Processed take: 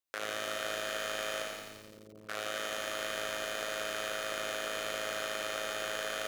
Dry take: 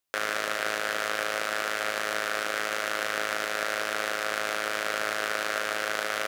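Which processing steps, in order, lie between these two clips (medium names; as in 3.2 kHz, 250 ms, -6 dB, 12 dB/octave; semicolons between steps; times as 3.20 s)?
1.42–2.29 s: Gaussian low-pass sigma 23 samples; on a send: flutter echo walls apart 9.7 m, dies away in 0.79 s; on the sum: bit-crushed delay 86 ms, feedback 80%, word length 7-bit, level -5 dB; trim -9 dB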